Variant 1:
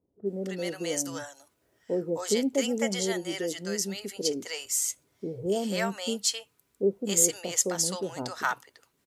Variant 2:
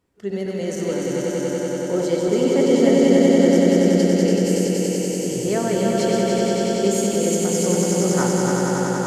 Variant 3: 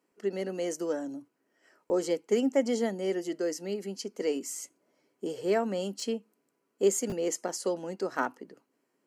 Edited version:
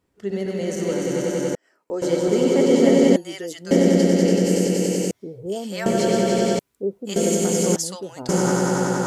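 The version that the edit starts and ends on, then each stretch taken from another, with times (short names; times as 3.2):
2
1.55–2.02 from 3
3.16–3.71 from 1
5.11–5.86 from 1
6.59–7.16 from 1
7.76–8.29 from 1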